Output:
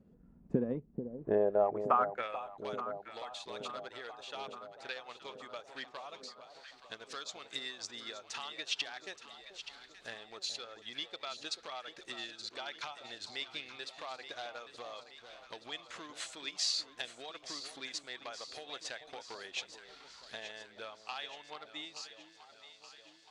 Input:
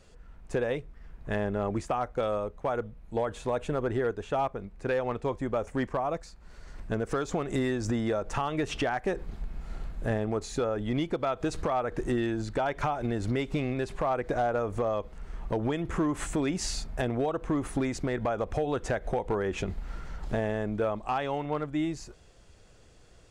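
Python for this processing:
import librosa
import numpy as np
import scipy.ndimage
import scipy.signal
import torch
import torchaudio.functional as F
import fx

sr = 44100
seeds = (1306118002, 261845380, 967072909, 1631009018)

y = fx.filter_sweep_bandpass(x, sr, from_hz=220.0, to_hz=4100.0, start_s=1.01, end_s=2.63, q=3.0)
y = fx.transient(y, sr, attack_db=3, sustain_db=-7)
y = fx.echo_alternate(y, sr, ms=437, hz=910.0, feedback_pct=76, wet_db=-9.0)
y = y * 10.0 ** (6.5 / 20.0)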